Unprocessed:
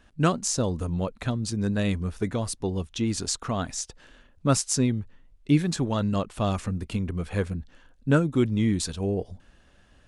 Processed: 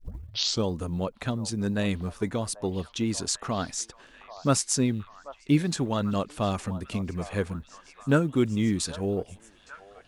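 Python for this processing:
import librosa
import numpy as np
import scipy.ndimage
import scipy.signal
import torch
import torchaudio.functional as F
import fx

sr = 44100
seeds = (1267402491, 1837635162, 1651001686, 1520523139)

p1 = fx.tape_start_head(x, sr, length_s=0.68)
p2 = fx.quant_float(p1, sr, bits=6)
p3 = fx.low_shelf(p2, sr, hz=81.0, db=-10.0)
y = p3 + fx.echo_stepped(p3, sr, ms=788, hz=830.0, octaves=0.7, feedback_pct=70, wet_db=-11.5, dry=0)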